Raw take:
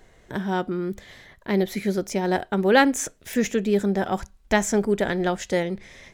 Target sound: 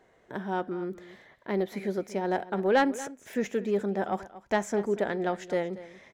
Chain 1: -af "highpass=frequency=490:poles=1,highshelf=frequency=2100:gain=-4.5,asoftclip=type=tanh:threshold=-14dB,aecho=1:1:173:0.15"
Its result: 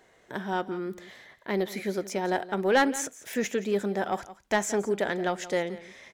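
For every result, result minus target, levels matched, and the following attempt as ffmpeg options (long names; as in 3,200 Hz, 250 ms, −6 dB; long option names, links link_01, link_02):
echo 61 ms early; 4,000 Hz band +5.0 dB
-af "highpass=frequency=490:poles=1,highshelf=frequency=2100:gain=-4.5,asoftclip=type=tanh:threshold=-14dB,aecho=1:1:234:0.15"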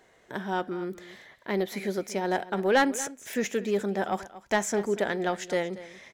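4,000 Hz band +5.0 dB
-af "highpass=frequency=490:poles=1,highshelf=frequency=2100:gain=-15,asoftclip=type=tanh:threshold=-14dB,aecho=1:1:234:0.15"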